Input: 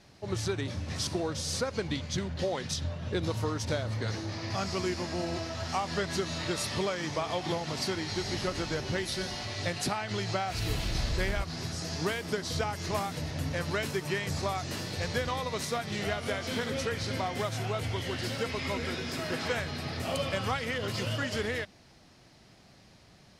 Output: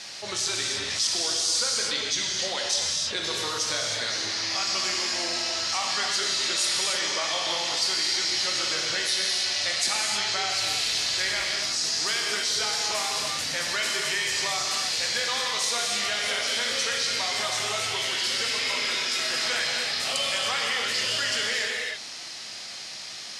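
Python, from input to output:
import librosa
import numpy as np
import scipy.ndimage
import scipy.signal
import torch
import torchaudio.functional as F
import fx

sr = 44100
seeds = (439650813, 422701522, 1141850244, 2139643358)

y = fx.weighting(x, sr, curve='ITU-R 468')
y = fx.rev_gated(y, sr, seeds[0], gate_ms=340, shape='flat', drr_db=-0.5)
y = fx.env_flatten(y, sr, amount_pct=50)
y = y * librosa.db_to_amplitude(-4.0)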